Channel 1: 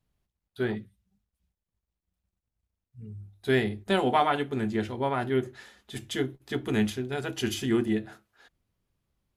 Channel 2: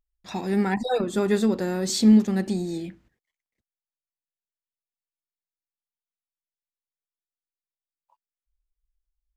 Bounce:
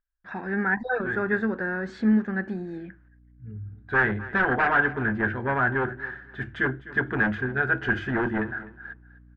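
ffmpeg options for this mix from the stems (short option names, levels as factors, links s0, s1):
-filter_complex "[0:a]equalizer=f=95:t=o:w=2:g=4.5,aeval=exprs='0.299*sin(PI/2*3.16*val(0)/0.299)':c=same,aeval=exprs='val(0)+0.0126*(sin(2*PI*60*n/s)+sin(2*PI*2*60*n/s)/2+sin(2*PI*3*60*n/s)/3+sin(2*PI*4*60*n/s)/4+sin(2*PI*5*60*n/s)/5)':c=same,adelay=450,volume=0.237,asplit=2[s0][s1];[s1]volume=0.133[s2];[1:a]volume=0.531,asplit=2[s3][s4];[s4]apad=whole_len=432903[s5];[s0][s5]sidechaincompress=threshold=0.0251:ratio=8:attack=16:release=1410[s6];[s2]aecho=0:1:253|506|759:1|0.19|0.0361[s7];[s6][s3][s7]amix=inputs=3:normalize=0,lowpass=f=1600:t=q:w=11"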